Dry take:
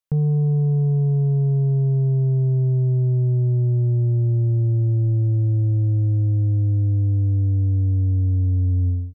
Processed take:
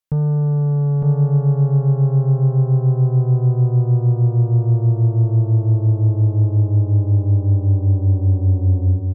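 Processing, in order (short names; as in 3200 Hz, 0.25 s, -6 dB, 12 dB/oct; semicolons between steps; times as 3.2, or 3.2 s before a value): added harmonics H 4 -21 dB, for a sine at -16 dBFS; echo 0.907 s -3 dB; gain +1.5 dB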